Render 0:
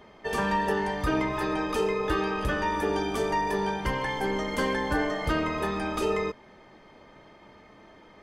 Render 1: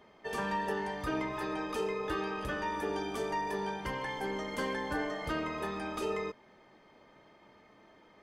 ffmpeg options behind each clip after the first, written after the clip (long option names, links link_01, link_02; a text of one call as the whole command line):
ffmpeg -i in.wav -af "lowshelf=frequency=87:gain=-8.5,volume=-7dB" out.wav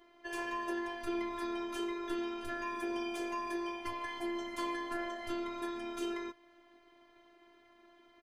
ffmpeg -i in.wav -af "aecho=1:1:5.5:0.58,afftfilt=real='hypot(re,im)*cos(PI*b)':imag='0':win_size=512:overlap=0.75" out.wav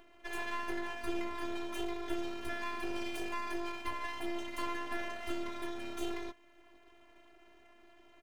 ffmpeg -i in.wav -filter_complex "[0:a]acrossover=split=260|1000[link_01][link_02][link_03];[link_02]acompressor=mode=upward:threshold=-56dB:ratio=2.5[link_04];[link_01][link_04][link_03]amix=inputs=3:normalize=0,aeval=exprs='max(val(0),0)':channel_layout=same,volume=4dB" out.wav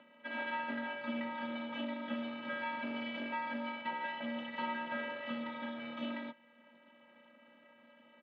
ffmpeg -i in.wav -af "highpass=frequency=340:width_type=q:width=0.5412,highpass=frequency=340:width_type=q:width=1.307,lowpass=frequency=3600:width_type=q:width=0.5176,lowpass=frequency=3600:width_type=q:width=0.7071,lowpass=frequency=3600:width_type=q:width=1.932,afreqshift=-110,volume=1.5dB" out.wav